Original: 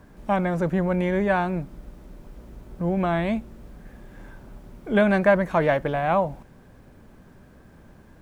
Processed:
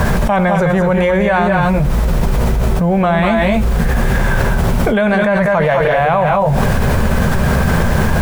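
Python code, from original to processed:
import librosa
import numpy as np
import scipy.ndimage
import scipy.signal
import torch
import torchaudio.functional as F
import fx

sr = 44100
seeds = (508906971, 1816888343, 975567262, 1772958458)

y = fx.peak_eq(x, sr, hz=300.0, db=-14.5, octaves=0.5)
y = fx.doubler(y, sr, ms=13.0, db=-13.5)
y = fx.echo_multitap(y, sr, ms=(87, 198, 213), db=(-19.0, -8.0, -6.5))
y = fx.env_flatten(y, sr, amount_pct=100)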